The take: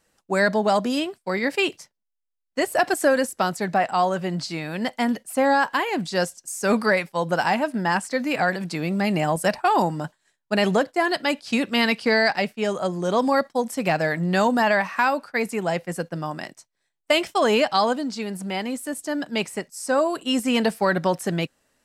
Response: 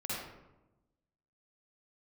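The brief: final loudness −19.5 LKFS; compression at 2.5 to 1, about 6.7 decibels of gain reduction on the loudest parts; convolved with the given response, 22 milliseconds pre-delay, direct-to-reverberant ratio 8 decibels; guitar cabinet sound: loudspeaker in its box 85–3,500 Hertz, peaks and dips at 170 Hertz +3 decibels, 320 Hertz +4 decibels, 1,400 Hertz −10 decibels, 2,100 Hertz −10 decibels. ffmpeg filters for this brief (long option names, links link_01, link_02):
-filter_complex "[0:a]acompressor=threshold=-25dB:ratio=2.5,asplit=2[link_01][link_02];[1:a]atrim=start_sample=2205,adelay=22[link_03];[link_02][link_03]afir=irnorm=-1:irlink=0,volume=-11.5dB[link_04];[link_01][link_04]amix=inputs=2:normalize=0,highpass=85,equalizer=frequency=170:width_type=q:width=4:gain=3,equalizer=frequency=320:width_type=q:width=4:gain=4,equalizer=frequency=1400:width_type=q:width=4:gain=-10,equalizer=frequency=2100:width_type=q:width=4:gain=-10,lowpass=frequency=3500:width=0.5412,lowpass=frequency=3500:width=1.3066,volume=8dB"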